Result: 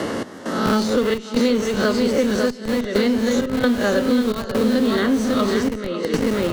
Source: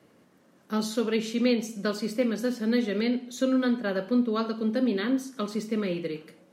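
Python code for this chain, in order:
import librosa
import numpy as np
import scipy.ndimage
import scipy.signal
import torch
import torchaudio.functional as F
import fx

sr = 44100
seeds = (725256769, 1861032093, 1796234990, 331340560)

p1 = fx.spec_swells(x, sr, rise_s=0.38)
p2 = fx.notch(p1, sr, hz=2400.0, q=5.7)
p3 = p2 + fx.echo_feedback(p2, sr, ms=548, feedback_pct=34, wet_db=-6.0, dry=0)
p4 = fx.step_gate(p3, sr, bpm=66, pattern='x.xxx.xxxxx..x', floor_db=-12.0, edge_ms=4.5)
p5 = scipy.signal.sosfilt(scipy.signal.butter(2, 8400.0, 'lowpass', fs=sr, output='sos'), p4)
p6 = fx.peak_eq(p5, sr, hz=150.0, db=-10.0, octaves=0.56)
p7 = fx.schmitt(p6, sr, flips_db=-32.5)
p8 = p6 + (p7 * librosa.db_to_amplitude(-8.5))
p9 = fx.band_squash(p8, sr, depth_pct=100)
y = p9 * librosa.db_to_amplitude(6.0)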